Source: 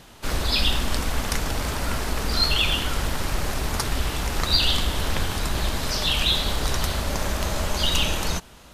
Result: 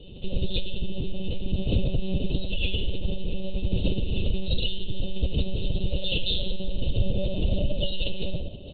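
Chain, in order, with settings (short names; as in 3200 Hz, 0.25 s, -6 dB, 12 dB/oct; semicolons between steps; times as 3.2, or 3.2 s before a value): elliptic band-stop 650–2800 Hz, stop band 40 dB; low shelf 150 Hz +4 dB; notches 60/120/180/240/300/360/420/480 Hz; comb 3.4 ms, depth 81%; compressor 8:1, threshold -21 dBFS, peak gain reduction 13.5 dB; band-limited delay 0.199 s, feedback 81%, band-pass 680 Hz, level -14 dB; reverb, pre-delay 3 ms, DRR 3.5 dB; monotone LPC vocoder at 8 kHz 190 Hz; gain -9 dB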